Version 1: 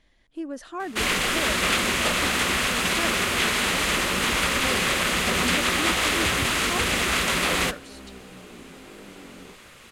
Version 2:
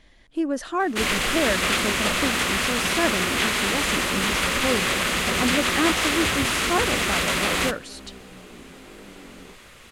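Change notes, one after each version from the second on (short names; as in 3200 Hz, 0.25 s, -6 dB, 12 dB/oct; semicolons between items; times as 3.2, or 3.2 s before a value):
speech +8.5 dB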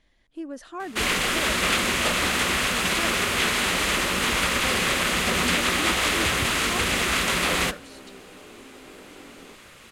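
speech -10.5 dB; second sound: add HPF 250 Hz 24 dB/oct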